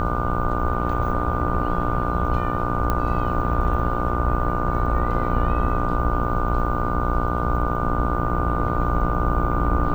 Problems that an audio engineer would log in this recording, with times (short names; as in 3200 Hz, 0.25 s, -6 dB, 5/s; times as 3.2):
buzz 60 Hz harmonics 25 -26 dBFS
tone 1200 Hz -28 dBFS
2.9 pop -10 dBFS